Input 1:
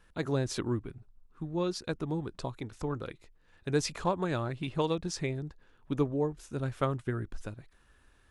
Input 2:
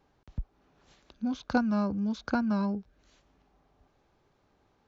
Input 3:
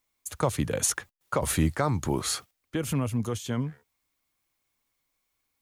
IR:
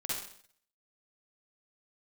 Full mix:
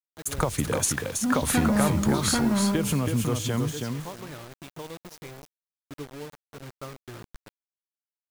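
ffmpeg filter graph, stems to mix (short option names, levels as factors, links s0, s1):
-filter_complex "[0:a]volume=0.168,asplit=2[s0][s1];[s1]volume=0.188[s2];[1:a]dynaudnorm=f=230:g=5:m=2.66,asoftclip=type=tanh:threshold=0.126,volume=0.335,asplit=2[s3][s4];[s4]volume=0.562[s5];[2:a]acompressor=threshold=0.0355:ratio=6,volume=1.26,asplit=2[s6][s7];[s7]volume=0.562[s8];[3:a]atrim=start_sample=2205[s9];[s5][s9]afir=irnorm=-1:irlink=0[s10];[s2][s8]amix=inputs=2:normalize=0,aecho=0:1:324|648|972:1|0.16|0.0256[s11];[s0][s3][s6][s10][s11]amix=inputs=5:normalize=0,acontrast=25,acrusher=bits=6:mix=0:aa=0.000001"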